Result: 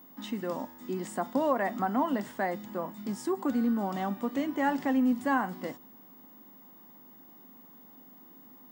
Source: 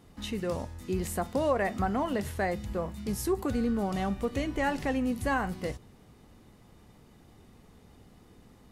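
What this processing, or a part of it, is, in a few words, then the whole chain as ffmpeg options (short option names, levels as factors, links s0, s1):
old television with a line whistle: -af "highpass=f=200:w=0.5412,highpass=f=200:w=1.3066,equalizer=f=260:t=q:w=4:g=6,equalizer=f=440:t=q:w=4:g=-8,equalizer=f=950:t=q:w=4:g=5,equalizer=f=2500:t=q:w=4:g=-8,equalizer=f=4200:t=q:w=4:g=-7,equalizer=f=6100:t=q:w=4:g=-6,lowpass=f=7800:w=0.5412,lowpass=f=7800:w=1.3066,aeval=exprs='val(0)+0.00251*sin(2*PI*15625*n/s)':c=same"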